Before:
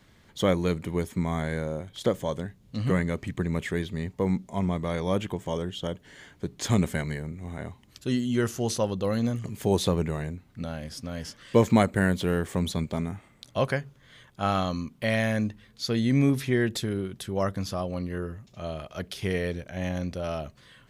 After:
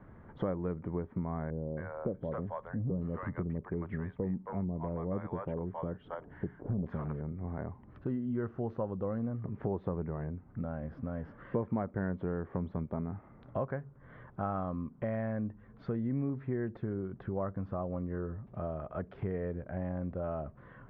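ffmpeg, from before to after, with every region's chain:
-filter_complex "[0:a]asettb=1/sr,asplit=3[a][b][c];[a]atrim=end=1.504[d];[b]atrim=start=1.5:end=7.21,asetpts=PTS-STARTPTS,afade=t=in:d=0.004:c=qsin,afade=t=out:st=5.706:d=0.004:c=qsin,asoftclip=type=hard:threshold=-18dB,acrossover=split=670[e][f];[f]adelay=270[g];[e][g]amix=inputs=2:normalize=0,atrim=end_sample=251811[h];[c]atrim=start=7.206[i];[d][h]acrossfade=d=0.004:c1=hsin:c2=qsin[j];[j][i]acrossfade=d=0.004:c1=qsin:c2=hsin,lowpass=f=1.4k:w=0.5412,lowpass=f=1.4k:w=1.3066,acompressor=threshold=-42dB:ratio=3,volume=5.5dB"

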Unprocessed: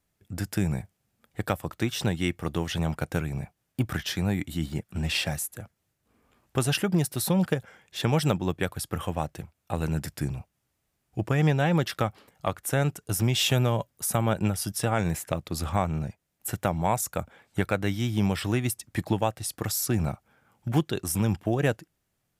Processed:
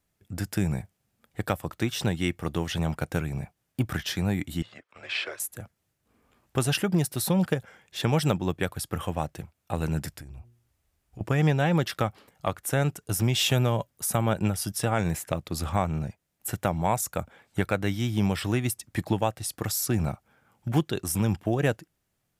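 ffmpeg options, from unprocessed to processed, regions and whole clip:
-filter_complex "[0:a]asettb=1/sr,asplit=3[a][b][c];[a]atrim=end=4.624[d];[b]atrim=start=4.62:end=5.4,asetpts=PTS-STARTPTS,afade=t=in:d=0.004:c=qsin,afade=t=out:st=0.776:d=0.004:c=qsin,afreqshift=-180,highpass=470,lowpass=3.3k[e];[c]atrim=start=5.396[f];[d][e]acrossfade=d=0.004:c1=hsin:c2=qsin[g];[g][f]acrossfade=d=0.004:c1=qsin:c2=hsin,asettb=1/sr,asplit=3[h][i][j];[h]atrim=end=10.134[k];[i]atrim=start=10.13:end=11.21,asetpts=PTS-STARTPTS,afade=t=in:d=0.004:c=qsin,afade=t=out:st=1.076:d=0.004:c=qsin,lowshelf=f=100:t=q:w=1.5:g=8,bandreject=f=118.8:t=h:w=4,bandreject=f=237.6:t=h:w=4,bandreject=f=356.4:t=h:w=4,bandreject=f=475.2:t=h:w=4,acompressor=threshold=-38dB:ratio=20:attack=3.2:release=140:knee=1:detection=peak[l];[j]atrim=start=11.206[m];[k][l]acrossfade=d=0.004:c1=hsin:c2=qsin[n];[n][m]acrossfade=d=0.004:c1=qsin:c2=hsin"

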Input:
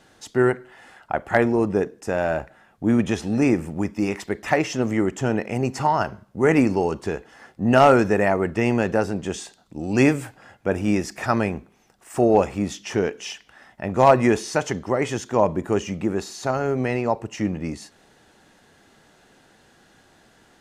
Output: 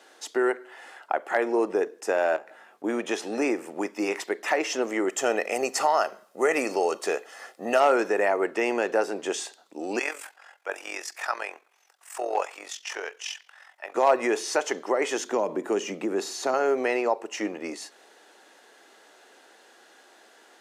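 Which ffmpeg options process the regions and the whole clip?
-filter_complex "[0:a]asettb=1/sr,asplit=3[a][b][c];[a]atrim=end=2.364[d];[b]atrim=start=2.36:end=2.84,asetpts=PTS-STARTPTS,afade=t=in:d=0.004:c=qsin,afade=t=out:st=0.476:d=0.004:c=qsin,lowshelf=f=150:g=8.5,acompressor=threshold=-36dB:ratio=6:attack=3.2:release=140:knee=1:detection=peak,asplit=2[e][f];[f]adelay=19,volume=-6dB[g];[e][g]amix=inputs=2:normalize=0,atrim=end_sample=21168[h];[c]atrim=start=2.836[i];[d][h]acrossfade=d=0.004:c1=hsin:c2=qsin[j];[j][i]acrossfade=d=0.004:c1=qsin:c2=hsin,asettb=1/sr,asplit=3[k][l][m];[k]atrim=end=5.094[n];[l]atrim=start=5.09:end=7.8,asetpts=PTS-STARTPTS,afade=t=in:d=0.004:c=qsin,afade=t=out:st=2.706:d=0.004:c=qsin,highshelf=f=4.5k:g=8.5,aecho=1:1:1.6:0.36,atrim=end_sample=119511[o];[m]atrim=start=7.796[p];[n][o]acrossfade=d=0.004:c1=hsin:c2=qsin[q];[q][p]acrossfade=d=0.004:c1=qsin:c2=hsin,asettb=1/sr,asplit=3[r][s][t];[r]atrim=end=9.994[u];[s]atrim=start=9.99:end=13.95,asetpts=PTS-STARTPTS,afade=t=in:d=0.004:c=qsin,afade=t=out:st=3.956:d=0.004:c=qsin,highpass=880,tremolo=f=44:d=0.71[v];[t]atrim=start=13.946[w];[u][v]acrossfade=d=0.004:c1=hsin:c2=qsin[x];[x][w]acrossfade=d=0.004:c1=qsin:c2=hsin,asettb=1/sr,asplit=3[y][z][aa];[y]atrim=end=15.184[ab];[z]atrim=start=15.18:end=16.54,asetpts=PTS-STARTPTS,afade=t=in:d=0.004:c=qsin,afade=t=out:st=1.356:d=0.004:c=qsin,acrossover=split=190|3000[ac][ad][ae];[ad]acompressor=threshold=-23dB:ratio=3:attack=3.2:release=140:knee=2.83:detection=peak[af];[ac][af][ae]amix=inputs=3:normalize=0,equalizer=f=190:t=o:w=2:g=8[ag];[aa]atrim=start=16.536[ah];[ab][ag]acrossfade=d=0.004:c1=hsin:c2=qsin[ai];[ai][ah]acrossfade=d=0.004:c1=qsin:c2=hsin,alimiter=limit=-13dB:level=0:latency=1:release=218,highpass=f=350:w=0.5412,highpass=f=350:w=1.3066,volume=2dB"

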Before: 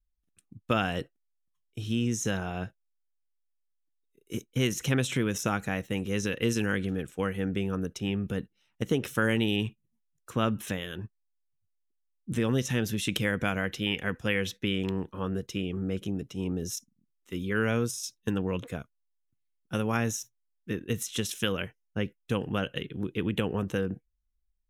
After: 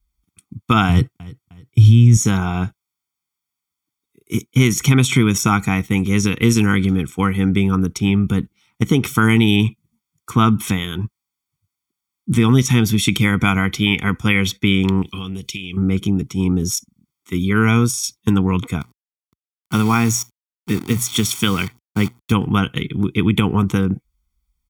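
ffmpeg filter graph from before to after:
-filter_complex "[0:a]asettb=1/sr,asplit=3[a][b][c];[a]atrim=end=0.894[d];[b]atrim=start=0.89:end=2.17,asetpts=PTS-STARTPTS,afade=t=in:d=0.004:c=qsin,afade=t=out:st=1.276:d=0.004:c=qsin,equalizer=f=110:t=o:w=0.97:g=14.5,aecho=1:1:308|616|924:0.0944|0.0359|0.0136,atrim=end_sample=56448[e];[c]atrim=start=2.166[f];[d][e]acrossfade=d=0.004:c1=hsin:c2=qsin[g];[g][f]acrossfade=d=0.004:c1=qsin:c2=hsin,asettb=1/sr,asplit=3[h][i][j];[h]atrim=end=15.024[k];[i]atrim=start=15.02:end=15.77,asetpts=PTS-STARTPTS,afade=t=in:d=0.004:c=qsin,afade=t=out:st=0.746:d=0.004:c=qsin,highshelf=f=2k:t=q:w=3:g=10,bandreject=f=910:w=5.7,acompressor=threshold=-38dB:ratio=5:attack=3.2:release=140:knee=1:detection=peak[l];[j]atrim=start=15.766[m];[k][l]acrossfade=d=0.004:c1=hsin:c2=qsin[n];[n][m]acrossfade=d=0.004:c1=qsin:c2=hsin,asettb=1/sr,asplit=3[o][p][q];[o]atrim=end=18.814[r];[p]atrim=start=18.81:end=22.32,asetpts=PTS-STARTPTS,afade=t=in:d=0.004:c=qsin,afade=t=out:st=3.506:d=0.004:c=qsin,bandreject=f=60:t=h:w=6,bandreject=f=120:t=h:w=6,acrusher=bits=8:dc=4:mix=0:aa=0.000001,highpass=82[s];[q]atrim=start=22.316[t];[r][s]acrossfade=d=0.004:c1=hsin:c2=qsin[u];[u][t]acrossfade=d=0.004:c1=qsin:c2=hsin,highpass=45,aecho=1:1:0.9:0.91,alimiter=level_in=12.5dB:limit=-1dB:release=50:level=0:latency=1,volume=-2dB"

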